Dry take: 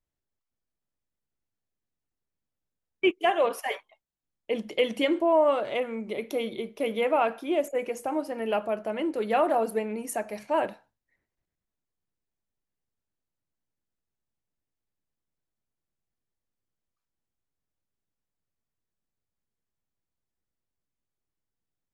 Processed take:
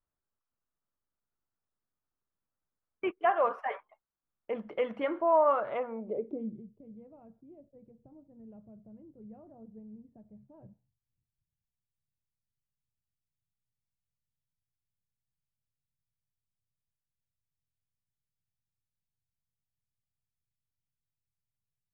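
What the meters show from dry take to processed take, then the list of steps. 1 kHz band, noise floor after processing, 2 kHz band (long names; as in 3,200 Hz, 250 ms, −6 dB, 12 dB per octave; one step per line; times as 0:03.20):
−4.0 dB, below −85 dBFS, −9.0 dB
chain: dynamic equaliser 320 Hz, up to −7 dB, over −40 dBFS, Q 1.4
low-pass filter sweep 1,300 Hz → 130 Hz, 0:05.76–0:06.71
level −4 dB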